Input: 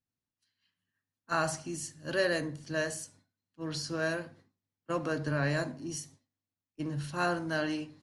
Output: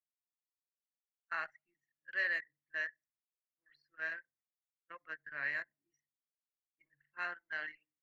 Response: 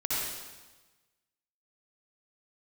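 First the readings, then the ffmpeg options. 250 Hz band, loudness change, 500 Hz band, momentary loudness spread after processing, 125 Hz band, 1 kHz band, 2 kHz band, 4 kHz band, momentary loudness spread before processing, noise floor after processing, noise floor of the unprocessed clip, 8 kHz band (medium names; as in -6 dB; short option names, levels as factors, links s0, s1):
-31.0 dB, -6.0 dB, -21.5 dB, 16 LU, under -35 dB, -11.5 dB, -1.5 dB, -14.5 dB, 10 LU, under -85 dBFS, under -85 dBFS, under -30 dB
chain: -af "bandpass=f=2000:t=q:w=6.4:csg=0,anlmdn=0.01,volume=2.11"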